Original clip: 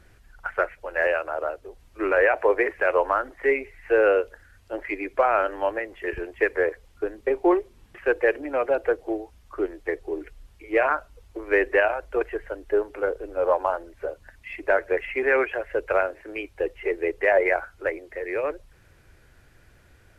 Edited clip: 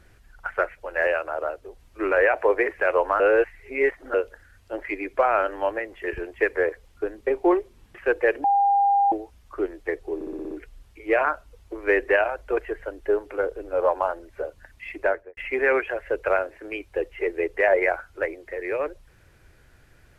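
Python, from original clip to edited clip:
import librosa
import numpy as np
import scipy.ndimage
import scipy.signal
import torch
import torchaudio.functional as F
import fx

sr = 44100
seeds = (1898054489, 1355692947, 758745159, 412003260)

y = fx.studio_fade_out(x, sr, start_s=14.63, length_s=0.38)
y = fx.edit(y, sr, fx.reverse_span(start_s=3.2, length_s=0.94),
    fx.bleep(start_s=8.44, length_s=0.68, hz=802.0, db=-16.0),
    fx.stutter(start_s=10.15, slice_s=0.06, count=7), tone=tone)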